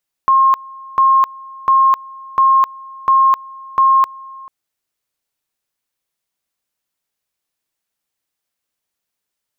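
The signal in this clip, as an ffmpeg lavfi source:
ffmpeg -f lavfi -i "aevalsrc='pow(10,(-7.5-23.5*gte(mod(t,0.7),0.26))/20)*sin(2*PI*1070*t)':duration=4.2:sample_rate=44100" out.wav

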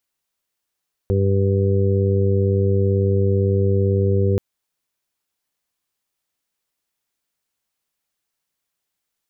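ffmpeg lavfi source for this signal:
ffmpeg -f lavfi -i "aevalsrc='0.15*sin(2*PI*97.9*t)+0.0596*sin(2*PI*195.8*t)+0.0224*sin(2*PI*293.7*t)+0.0841*sin(2*PI*391.6*t)+0.0596*sin(2*PI*489.5*t)':duration=3.28:sample_rate=44100" out.wav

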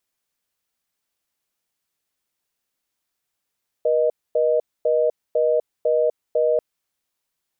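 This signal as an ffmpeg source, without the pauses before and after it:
ffmpeg -f lavfi -i "aevalsrc='0.119*(sin(2*PI*480*t)+sin(2*PI*620*t))*clip(min(mod(t,0.5),0.25-mod(t,0.5))/0.005,0,1)':duration=2.74:sample_rate=44100" out.wav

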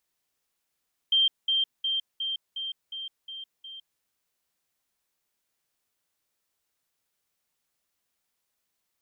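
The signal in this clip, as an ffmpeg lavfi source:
ffmpeg -f lavfi -i "aevalsrc='pow(10,(-18.5-3*floor(t/0.36))/20)*sin(2*PI*3160*t)*clip(min(mod(t,0.36),0.16-mod(t,0.36))/0.005,0,1)':duration=2.88:sample_rate=44100" out.wav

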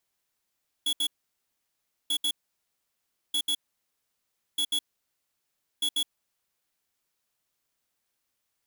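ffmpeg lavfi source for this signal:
ffmpeg -f lavfi -i "aevalsrc='0.0473*(2*lt(mod(3370*t,1),0.5)-1)*clip(min(mod(mod(t,1.24),0.14),0.07-mod(mod(t,1.24),0.14))/0.005,0,1)*lt(mod(t,1.24),0.28)':duration=6.2:sample_rate=44100" out.wav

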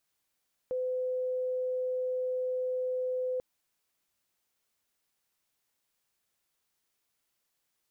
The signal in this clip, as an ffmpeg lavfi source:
ffmpeg -f lavfi -i "aevalsrc='0.0355*sin(2*PI*508*t)':duration=2.69:sample_rate=44100" out.wav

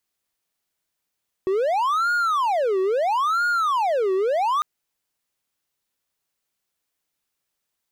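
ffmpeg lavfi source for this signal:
ffmpeg -f lavfi -i "aevalsrc='0.15*(1-4*abs(mod((902.5*t-527.5/(2*PI*0.75)*sin(2*PI*0.75*t))+0.25,1)-0.5))':duration=3.15:sample_rate=44100" out.wav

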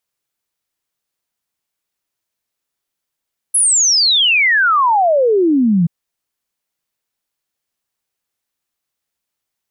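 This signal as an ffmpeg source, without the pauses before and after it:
ffmpeg -f lavfi -i "aevalsrc='0.335*clip(min(t,2.33-t)/0.01,0,1)*sin(2*PI*11000*2.33/log(160/11000)*(exp(log(160/11000)*t/2.33)-1))':duration=2.33:sample_rate=44100" out.wav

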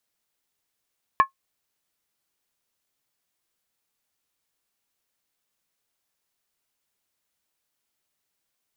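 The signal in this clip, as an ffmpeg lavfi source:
ffmpeg -f lavfi -i "aevalsrc='0.398*pow(10,-3*t/0.11)*sin(2*PI*1080*t)+0.126*pow(10,-3*t/0.087)*sin(2*PI*1721.5*t)+0.0398*pow(10,-3*t/0.075)*sin(2*PI*2306.9*t)+0.0126*pow(10,-3*t/0.073)*sin(2*PI*2479.7*t)+0.00398*pow(10,-3*t/0.068)*sin(2*PI*2865.2*t)':duration=0.63:sample_rate=44100" out.wav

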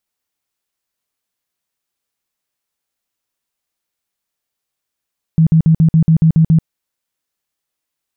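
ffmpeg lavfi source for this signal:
ffmpeg -f lavfi -i "aevalsrc='0.501*sin(2*PI*161*mod(t,0.14))*lt(mod(t,0.14),14/161)':duration=1.26:sample_rate=44100" out.wav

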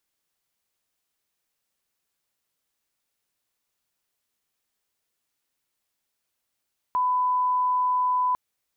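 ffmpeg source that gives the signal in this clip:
ffmpeg -f lavfi -i "sine=frequency=1000:duration=1.4:sample_rate=44100,volume=-1.94dB" out.wav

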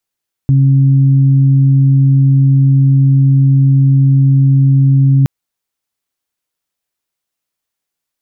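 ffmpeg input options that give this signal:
ffmpeg -f lavfi -i "aevalsrc='0.531*sin(2*PI*136*t)+0.112*sin(2*PI*272*t)':duration=4.77:sample_rate=44100" out.wav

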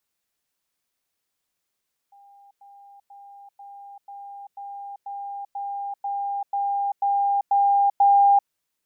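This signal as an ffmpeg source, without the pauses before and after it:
ffmpeg -f lavfi -i "aevalsrc='pow(10,(-48.5+3*floor(t/0.49))/20)*sin(2*PI*802*t)*clip(min(mod(t,0.49),0.39-mod(t,0.49))/0.005,0,1)':duration=6.37:sample_rate=44100" out.wav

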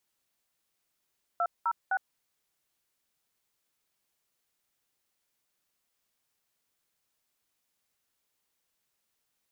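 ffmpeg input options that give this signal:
ffmpeg -f lavfi -i "aevalsrc='0.0422*clip(min(mod(t,0.256),0.059-mod(t,0.256))/0.002,0,1)*(eq(floor(t/0.256),0)*(sin(2*PI*697*mod(t,0.256))+sin(2*PI*1336*mod(t,0.256)))+eq(floor(t/0.256),1)*(sin(2*PI*941*mod(t,0.256))+sin(2*PI*1336*mod(t,0.256)))+eq(floor(t/0.256),2)*(sin(2*PI*770*mod(t,0.256))+sin(2*PI*1477*mod(t,0.256))))':duration=0.768:sample_rate=44100" out.wav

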